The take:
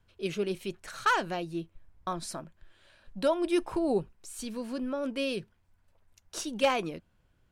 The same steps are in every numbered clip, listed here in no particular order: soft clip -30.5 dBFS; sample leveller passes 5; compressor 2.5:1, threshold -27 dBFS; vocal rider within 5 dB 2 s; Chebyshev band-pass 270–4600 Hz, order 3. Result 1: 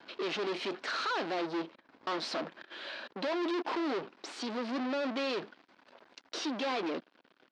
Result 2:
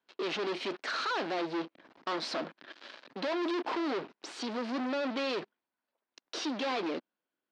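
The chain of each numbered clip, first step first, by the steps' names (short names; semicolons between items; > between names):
vocal rider > compressor > soft clip > sample leveller > Chebyshev band-pass; vocal rider > compressor > sample leveller > soft clip > Chebyshev band-pass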